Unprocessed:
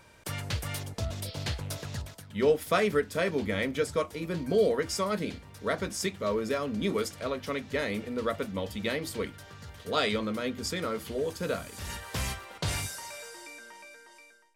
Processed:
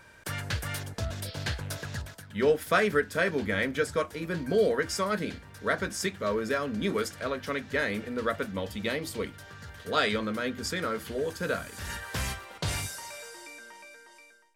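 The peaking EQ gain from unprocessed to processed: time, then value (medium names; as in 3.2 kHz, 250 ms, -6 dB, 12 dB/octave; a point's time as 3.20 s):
peaking EQ 1.6 kHz 0.4 oct
8.46 s +9 dB
9.18 s -2 dB
9.61 s +8.5 dB
12.01 s +8.5 dB
12.46 s +1 dB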